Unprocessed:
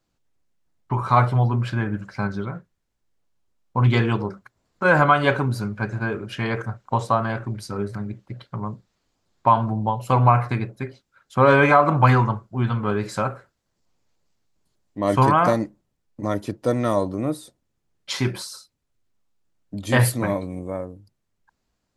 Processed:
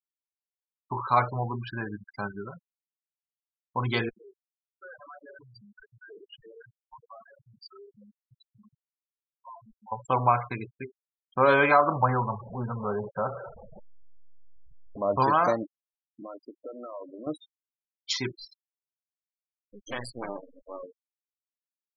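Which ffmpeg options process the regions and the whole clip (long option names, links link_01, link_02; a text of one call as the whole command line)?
ffmpeg -i in.wav -filter_complex "[0:a]asettb=1/sr,asplit=3[link_01][link_02][link_03];[link_01]atrim=end=4.094[link_04];[link_02]atrim=start=4.09:end=9.92,asetpts=PTS-STARTPTS,afade=type=in:duration=0.004:curve=qsin,afade=type=out:start_time=5.826:duration=0.004:curve=qsin,acompressor=threshold=-25dB:ratio=2.5:attack=3.2:release=140:knee=1:detection=peak,aeval=exprs='(tanh(63.1*val(0)+0.4)-tanh(0.4))/63.1':channel_layout=same[link_05];[link_03]atrim=start=9.916[link_06];[link_04][link_05]acrossfade=duration=0.004:curve1=hsin:curve2=qsin[link_07];[link_07][link_06]acrossfade=duration=0.004:curve1=qsin:curve2=hsin,asettb=1/sr,asplit=3[link_08][link_09][link_10];[link_08]atrim=end=11.964[link_11];[link_09]atrim=start=11.96:end=15.2,asetpts=PTS-STARTPTS,afade=type=in:duration=0.004:curve=qsin,afade=type=out:start_time=3.236:duration=0.004:curve=qsin,aeval=exprs='val(0)+0.5*0.0668*sgn(val(0))':channel_layout=same,lowpass=1100,equalizer=frequency=320:width=5.5:gain=-14[link_12];[link_10]atrim=start=15.196[link_13];[link_11][link_12]acrossfade=duration=0.004:curve1=hsin:curve2=qsin[link_14];[link_14][link_13]acrossfade=duration=0.004:curve1=qsin:curve2=hsin,asettb=1/sr,asplit=3[link_15][link_16][link_17];[link_15]atrim=end=16.234[link_18];[link_16]atrim=start=16.23:end=17.27,asetpts=PTS-STARTPTS,afade=type=in:duration=0.004:curve=qsin,afade=type=out:start_time=1.036:duration=0.004:curve=qsin,highpass=frequency=350:poles=1,acompressor=threshold=-28dB:ratio=16:attack=3.2:release=140:knee=1:detection=peak[link_19];[link_17]atrim=start=17.266[link_20];[link_18][link_19]acrossfade=duration=0.004:curve1=hsin:curve2=qsin[link_21];[link_21][link_20]acrossfade=duration=0.004:curve1=qsin:curve2=hsin,asettb=1/sr,asplit=3[link_22][link_23][link_24];[link_22]atrim=end=18.324[link_25];[link_23]atrim=start=18.32:end=20.83,asetpts=PTS-STARTPTS,afade=type=in:duration=0.004:curve=qsin,afade=type=out:start_time=2.506:duration=0.004:curve=qsin,highpass=frequency=85:poles=1,acompressor=threshold=-19dB:ratio=5:attack=3.2:release=140:knee=1:detection=peak,aeval=exprs='max(val(0),0)':channel_layout=same[link_26];[link_24]atrim=start=20.826[link_27];[link_25][link_26]acrossfade=duration=0.004:curve1=hsin:curve2=qsin[link_28];[link_28][link_27]acrossfade=duration=0.004:curve1=qsin:curve2=hsin,lowpass=5300,bass=frequency=250:gain=-10,treble=frequency=4000:gain=12,afftfilt=real='re*gte(hypot(re,im),0.0501)':imag='im*gte(hypot(re,im),0.0501)':win_size=1024:overlap=0.75,volume=-4.5dB" out.wav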